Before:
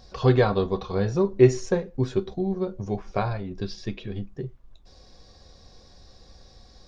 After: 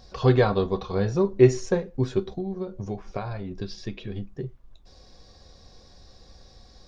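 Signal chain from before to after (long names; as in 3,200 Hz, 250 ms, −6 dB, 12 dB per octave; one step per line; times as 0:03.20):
0:02.28–0:04.37: downward compressor 10 to 1, threshold −27 dBFS, peak gain reduction 8.5 dB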